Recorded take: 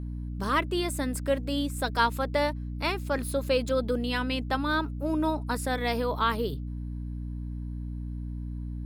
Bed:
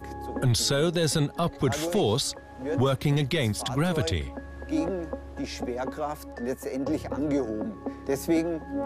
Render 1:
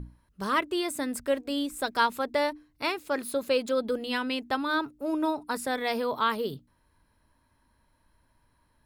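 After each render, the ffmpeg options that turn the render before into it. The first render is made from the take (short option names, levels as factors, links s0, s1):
-af "bandreject=f=60:t=h:w=6,bandreject=f=120:t=h:w=6,bandreject=f=180:t=h:w=6,bandreject=f=240:t=h:w=6,bandreject=f=300:t=h:w=6"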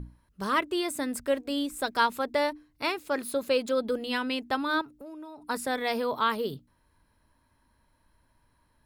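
-filter_complex "[0:a]asettb=1/sr,asplit=3[s0][s1][s2];[s0]atrim=end=4.814[s3];[s1]atrim=start=4.81:end=5.47,asetpts=PTS-STARTPTS,afade=t=in:d=0.004:c=qsin,afade=t=out:st=0.656:d=0.004:c=qsin,acompressor=threshold=0.00891:ratio=6:attack=3.2:release=140:knee=1:detection=peak[s4];[s2]atrim=start=5.466[s5];[s3][s4]acrossfade=d=0.004:c1=hsin:c2=qsin[s6];[s6][s5]acrossfade=d=0.004:c1=qsin:c2=hsin"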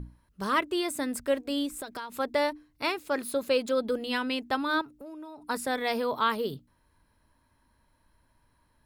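-filter_complex "[0:a]asettb=1/sr,asplit=3[s0][s1][s2];[s0]atrim=end=1.684[s3];[s1]atrim=start=1.68:end=2.18,asetpts=PTS-STARTPTS,afade=t=in:d=0.004:c=qsin,afade=t=out:st=0.496:d=0.004:c=qsin,acompressor=threshold=0.0224:ratio=20:attack=3.2:release=140:knee=1:detection=peak[s4];[s2]atrim=start=2.176[s5];[s3][s4]acrossfade=d=0.004:c1=hsin:c2=qsin[s6];[s6][s5]acrossfade=d=0.004:c1=qsin:c2=hsin"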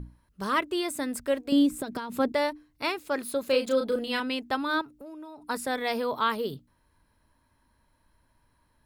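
-filter_complex "[0:a]asettb=1/sr,asplit=3[s0][s1][s2];[s0]atrim=end=1.524[s3];[s1]atrim=start=1.52:end=2.32,asetpts=PTS-STARTPTS,afade=t=in:d=0.004:c=qsin,afade=t=out:st=0.796:d=0.004:c=qsin,equalizer=f=170:t=o:w=2.4:g=13.5[s4];[s2]atrim=start=2.316[s5];[s3][s4]acrossfade=d=0.004:c1=hsin:c2=qsin[s6];[s6][s5]acrossfade=d=0.004:c1=qsin:c2=hsin,asettb=1/sr,asplit=3[s7][s8][s9];[s7]atrim=end=3.464[s10];[s8]atrim=start=3.46:end=4.2,asetpts=PTS-STARTPTS,afade=t=in:d=0.004:c=qsin,afade=t=out:st=0.736:d=0.004:c=qsin,asplit=2[s11][s12];[s12]adelay=34,volume=0.562[s13];[s11][s13]amix=inputs=2:normalize=0,atrim=end_sample=32634[s14];[s9]atrim=start=4.196[s15];[s10][s14]acrossfade=d=0.004:c1=hsin:c2=qsin[s16];[s16][s15]acrossfade=d=0.004:c1=qsin:c2=hsin"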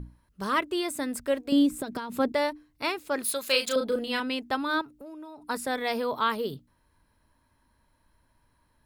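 -filter_complex "[0:a]asettb=1/sr,asplit=3[s0][s1][s2];[s0]atrim=end=3.244[s3];[s1]atrim=start=3.24:end=3.76,asetpts=PTS-STARTPTS,afade=t=in:d=0.004:c=qsin,afade=t=out:st=0.516:d=0.004:c=qsin,tiltshelf=f=890:g=-9.5[s4];[s2]atrim=start=3.756[s5];[s3][s4]acrossfade=d=0.004:c1=hsin:c2=qsin[s6];[s6][s5]acrossfade=d=0.004:c1=qsin:c2=hsin"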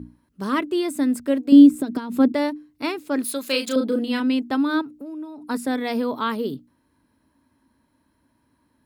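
-af "highpass=72,equalizer=f=270:w=1.7:g=13"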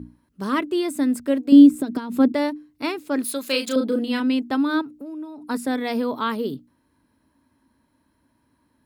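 -af anull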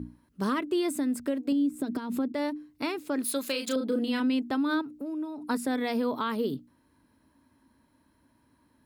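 -af "acompressor=threshold=0.0794:ratio=4,alimiter=limit=0.106:level=0:latency=1:release=296"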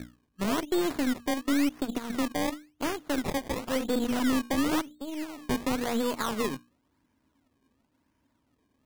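-af "acrusher=samples=22:mix=1:aa=0.000001:lfo=1:lforange=22:lforate=0.95,aeval=exprs='0.112*(cos(1*acos(clip(val(0)/0.112,-1,1)))-cos(1*PI/2))+0.0126*(cos(4*acos(clip(val(0)/0.112,-1,1)))-cos(4*PI/2))+0.00794*(cos(7*acos(clip(val(0)/0.112,-1,1)))-cos(7*PI/2))':c=same"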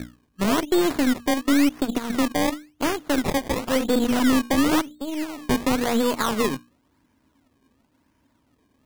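-af "volume=2.24"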